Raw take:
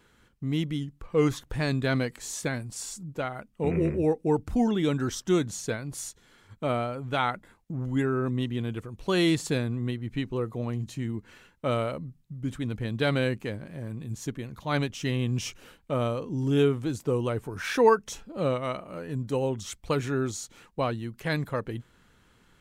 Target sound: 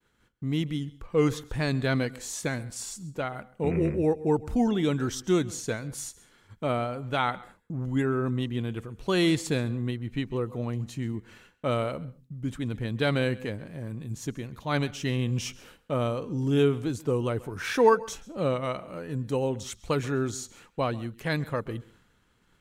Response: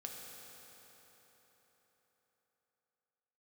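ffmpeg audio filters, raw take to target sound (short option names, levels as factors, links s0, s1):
-filter_complex "[0:a]agate=range=0.0224:threshold=0.00178:ratio=3:detection=peak,asplit=2[s0][s1];[1:a]atrim=start_sample=2205,atrim=end_sample=3969,adelay=133[s2];[s1][s2]afir=irnorm=-1:irlink=0,volume=0.168[s3];[s0][s3]amix=inputs=2:normalize=0"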